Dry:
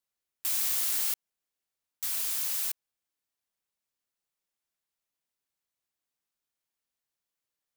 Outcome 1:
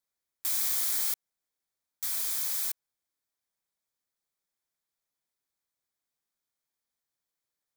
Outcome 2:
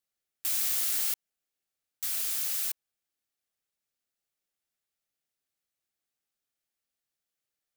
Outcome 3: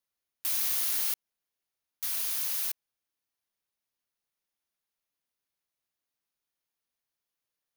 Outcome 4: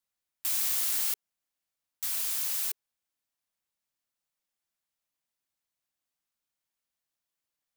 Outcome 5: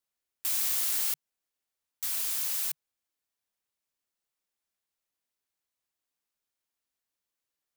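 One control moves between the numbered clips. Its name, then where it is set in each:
notch, frequency: 2800, 1000, 7700, 410, 150 Hz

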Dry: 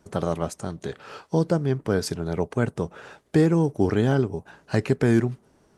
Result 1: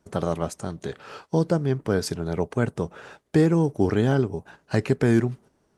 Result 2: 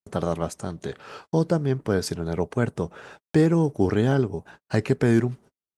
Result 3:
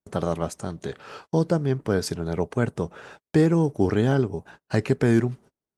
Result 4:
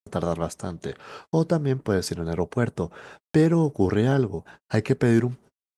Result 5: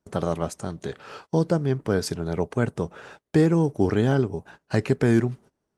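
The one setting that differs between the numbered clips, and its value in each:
gate, range: -7, -46, -33, -59, -19 dB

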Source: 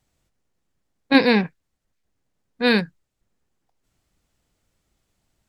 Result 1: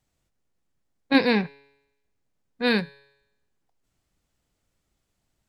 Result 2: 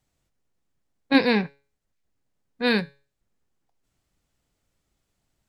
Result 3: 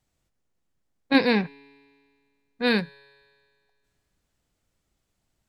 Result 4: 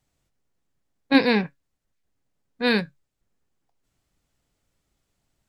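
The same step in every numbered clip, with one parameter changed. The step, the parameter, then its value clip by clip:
resonator, decay: 0.9, 0.37, 2, 0.15 s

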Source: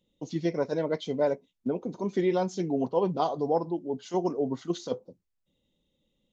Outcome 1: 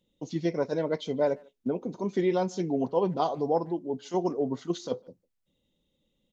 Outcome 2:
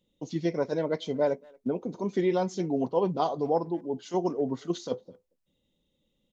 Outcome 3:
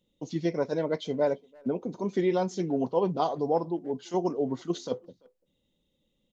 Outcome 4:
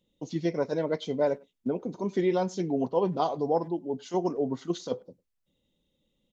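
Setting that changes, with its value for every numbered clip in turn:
speakerphone echo, time: 0.15, 0.23, 0.34, 0.1 s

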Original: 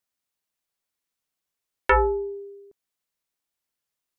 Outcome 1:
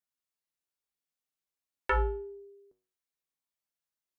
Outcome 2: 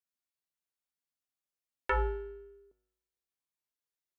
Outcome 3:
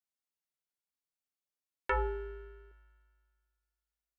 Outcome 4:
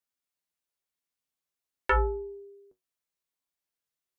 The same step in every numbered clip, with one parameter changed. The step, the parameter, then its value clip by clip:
resonator, decay: 0.42, 0.88, 2, 0.16 s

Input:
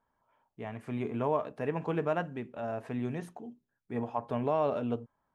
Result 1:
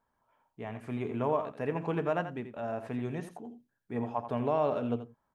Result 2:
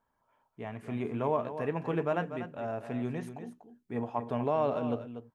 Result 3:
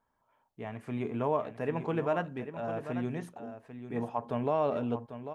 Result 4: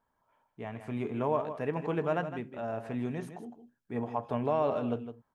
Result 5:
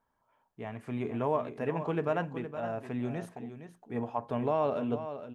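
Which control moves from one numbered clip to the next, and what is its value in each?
echo, time: 84, 242, 795, 159, 465 ms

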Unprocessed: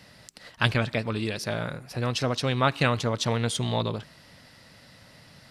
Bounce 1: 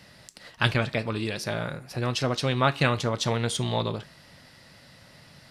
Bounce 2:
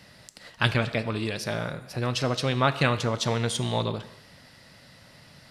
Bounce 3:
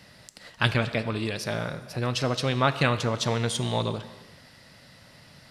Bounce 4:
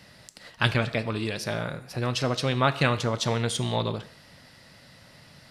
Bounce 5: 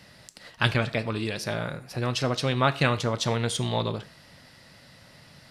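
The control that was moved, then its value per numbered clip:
non-linear reverb, gate: 90, 310, 460, 210, 140 ms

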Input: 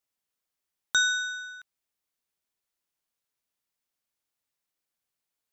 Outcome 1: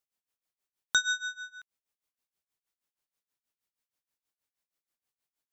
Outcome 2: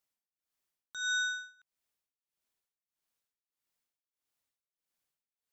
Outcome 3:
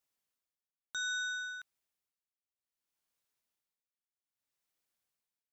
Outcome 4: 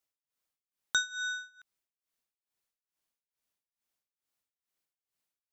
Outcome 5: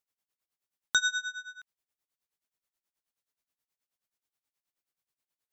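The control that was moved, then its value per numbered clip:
tremolo, rate: 6.3, 1.6, 0.62, 2.3, 9.4 Hz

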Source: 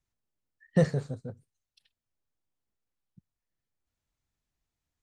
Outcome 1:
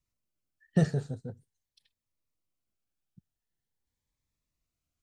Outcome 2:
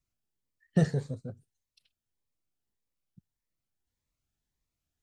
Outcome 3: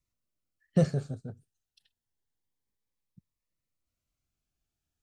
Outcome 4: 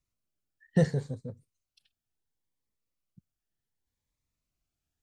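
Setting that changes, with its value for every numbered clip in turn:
cascading phaser, rate: 0.44, 1.7, 0.28, 0.69 Hz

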